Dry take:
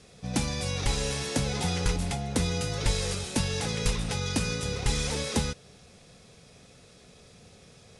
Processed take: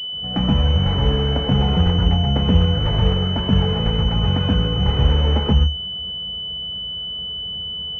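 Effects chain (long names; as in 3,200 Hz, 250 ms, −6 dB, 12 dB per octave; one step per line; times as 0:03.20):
convolution reverb RT60 0.10 s, pre-delay 125 ms, DRR 3 dB
switching amplifier with a slow clock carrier 3,000 Hz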